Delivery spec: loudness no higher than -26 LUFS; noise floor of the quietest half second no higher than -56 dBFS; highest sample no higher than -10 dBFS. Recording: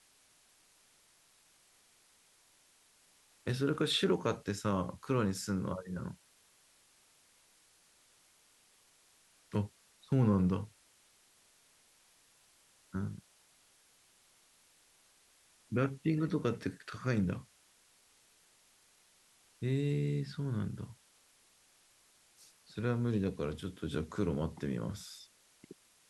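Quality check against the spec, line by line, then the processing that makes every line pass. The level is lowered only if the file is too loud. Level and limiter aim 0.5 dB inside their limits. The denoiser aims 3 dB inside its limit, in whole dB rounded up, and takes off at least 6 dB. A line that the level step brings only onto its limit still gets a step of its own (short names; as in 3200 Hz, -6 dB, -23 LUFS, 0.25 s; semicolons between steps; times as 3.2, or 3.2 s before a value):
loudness -35.5 LUFS: OK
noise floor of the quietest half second -67 dBFS: OK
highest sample -18.0 dBFS: OK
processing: none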